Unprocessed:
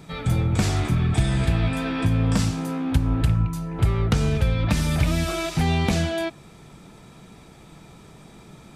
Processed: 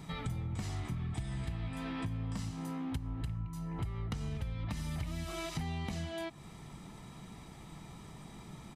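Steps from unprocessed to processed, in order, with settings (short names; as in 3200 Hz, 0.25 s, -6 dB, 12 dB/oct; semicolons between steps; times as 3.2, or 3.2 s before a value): comb 1 ms, depth 37%; compressor 5:1, threshold -32 dBFS, peak gain reduction 18.5 dB; gain -4.5 dB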